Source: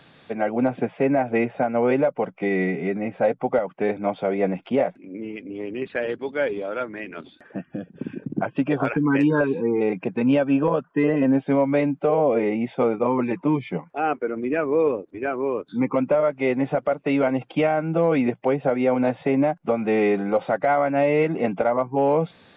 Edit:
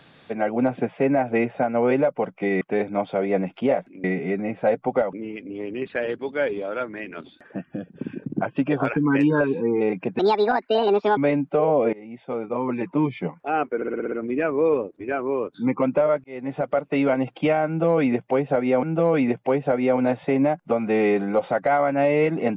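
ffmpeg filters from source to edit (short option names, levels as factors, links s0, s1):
-filter_complex "[0:a]asplit=15[s0][s1][s2][s3][s4][s5][s6][s7][s8][s9][s10][s11][s12][s13][s14];[s0]atrim=end=2.612[s15];[s1]atrim=start=3.698:end=5.132[s16];[s2]atrim=start=2.608:end=3.702[s17];[s3]atrim=start=5.128:end=10.194[s18];[s4]atrim=start=10.19:end=11.67,asetpts=PTS-STARTPTS,asetrate=66591,aresample=44100[s19];[s5]atrim=start=11.666:end=12.43,asetpts=PTS-STARTPTS,afade=t=out:st=0.76:d=0.004:c=hsin:silence=0.0630957[s20];[s6]atrim=start=12.43:end=14.322,asetpts=PTS-STARTPTS,afade=t=in:d=1.12:silence=0.0630957[s21];[s7]atrim=start=14.258:end=14.322[s22];[s8]atrim=start=14.258:end=14.322[s23];[s9]atrim=start=14.258:end=14.322[s24];[s10]atrim=start=14.258:end=14.322[s25];[s11]atrim=start=14.258:end=14.322[s26];[s12]atrim=start=14.258:end=16.38,asetpts=PTS-STARTPTS,afade=t=out:st=2.118:d=0.004:c=hsin[s27];[s13]atrim=start=16.38:end=18.972,asetpts=PTS-STARTPTS,afade=t=in:d=0.49[s28];[s14]atrim=start=17.808[s29];[s15][s16]acrossfade=d=0.004:c1=hsin:c2=hsin[s30];[s30][s17]acrossfade=d=0.004:c1=hsin:c2=hsin[s31];[s31][s18]acrossfade=d=0.004:c1=hsin:c2=hsin[s32];[s32][s19]acrossfade=d=0.004:c1=hsin:c2=hsin[s33];[s20][s21]concat=n=2:v=0:a=1[s34];[s33][s34]acrossfade=d=0.004:c1=hsin:c2=hsin[s35];[s35][s22]acrossfade=d=0.004:c1=hsin:c2=hsin[s36];[s36][s23]acrossfade=d=0.004:c1=hsin:c2=hsin[s37];[s37][s24]acrossfade=d=0.004:c1=hsin:c2=hsin[s38];[s38][s25]acrossfade=d=0.004:c1=hsin:c2=hsin[s39];[s39][s26]acrossfade=d=0.004:c1=hsin:c2=hsin[s40];[s27][s28]concat=n=2:v=0:a=1[s41];[s40][s41]acrossfade=d=0.004:c1=hsin:c2=hsin[s42];[s42][s29]acrossfade=d=0.004:c1=hsin:c2=hsin"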